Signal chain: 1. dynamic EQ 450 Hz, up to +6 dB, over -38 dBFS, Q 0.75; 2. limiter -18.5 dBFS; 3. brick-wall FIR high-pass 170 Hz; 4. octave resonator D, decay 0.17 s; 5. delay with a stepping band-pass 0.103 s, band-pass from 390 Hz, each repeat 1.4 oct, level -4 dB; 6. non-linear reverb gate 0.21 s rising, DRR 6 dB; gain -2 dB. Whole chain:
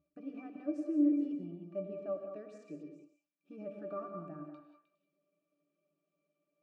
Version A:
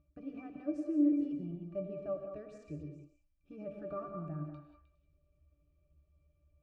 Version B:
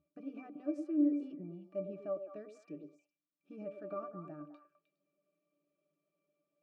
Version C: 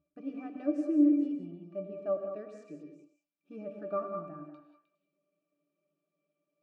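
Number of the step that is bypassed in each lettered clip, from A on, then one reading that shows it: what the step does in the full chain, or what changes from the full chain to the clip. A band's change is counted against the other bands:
3, 125 Hz band +8.0 dB; 6, echo-to-direct -4.0 dB to -8.5 dB; 2, mean gain reduction 1.5 dB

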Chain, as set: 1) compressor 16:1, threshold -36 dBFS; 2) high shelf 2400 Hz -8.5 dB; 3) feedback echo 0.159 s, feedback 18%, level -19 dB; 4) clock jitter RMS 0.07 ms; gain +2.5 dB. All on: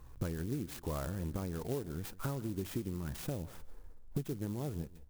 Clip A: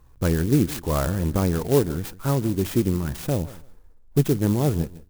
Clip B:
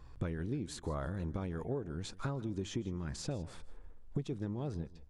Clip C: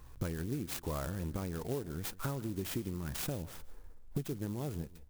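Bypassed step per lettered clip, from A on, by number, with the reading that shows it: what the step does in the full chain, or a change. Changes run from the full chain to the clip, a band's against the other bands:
1, mean gain reduction 12.5 dB; 4, 4 kHz band +3.0 dB; 2, 4 kHz band +4.0 dB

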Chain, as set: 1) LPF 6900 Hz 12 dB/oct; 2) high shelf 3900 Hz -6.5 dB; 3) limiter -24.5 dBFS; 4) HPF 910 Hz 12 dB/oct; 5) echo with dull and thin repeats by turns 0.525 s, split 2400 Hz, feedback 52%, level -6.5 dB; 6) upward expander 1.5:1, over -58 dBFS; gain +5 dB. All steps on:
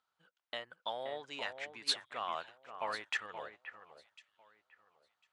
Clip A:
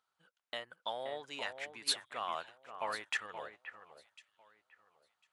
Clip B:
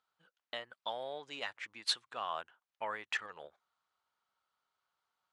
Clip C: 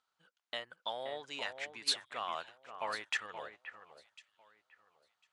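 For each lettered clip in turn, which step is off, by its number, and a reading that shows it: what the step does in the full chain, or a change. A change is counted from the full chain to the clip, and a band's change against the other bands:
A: 1, 8 kHz band +4.0 dB; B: 5, momentary loudness spread change -2 LU; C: 2, 8 kHz band +3.5 dB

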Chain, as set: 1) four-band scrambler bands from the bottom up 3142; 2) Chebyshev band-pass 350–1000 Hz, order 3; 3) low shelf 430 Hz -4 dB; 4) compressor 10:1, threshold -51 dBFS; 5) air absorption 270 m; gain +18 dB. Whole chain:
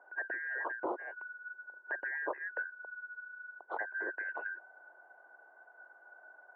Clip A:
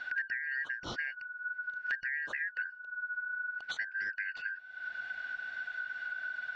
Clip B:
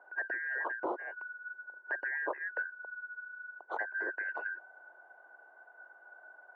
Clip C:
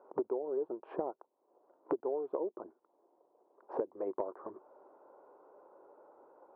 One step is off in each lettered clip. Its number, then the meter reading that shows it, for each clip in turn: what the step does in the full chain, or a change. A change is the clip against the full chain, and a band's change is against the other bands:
2, momentary loudness spread change -15 LU; 5, loudness change +2.0 LU; 1, crest factor change +2.5 dB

